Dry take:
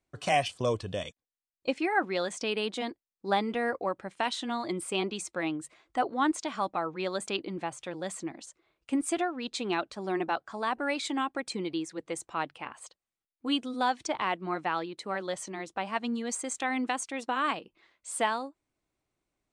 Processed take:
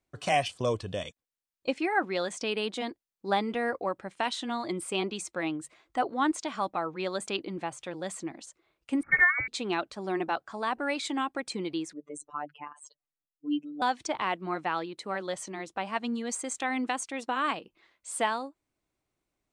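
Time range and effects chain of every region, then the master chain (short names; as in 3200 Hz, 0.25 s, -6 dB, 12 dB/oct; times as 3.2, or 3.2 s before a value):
9.03–9.48 band shelf 880 Hz +9.5 dB 1.1 oct + transient shaper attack +2 dB, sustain +7 dB + inverted band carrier 2500 Hz
11.93–13.82 spectral contrast raised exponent 2.2 + robotiser 147 Hz
whole clip: dry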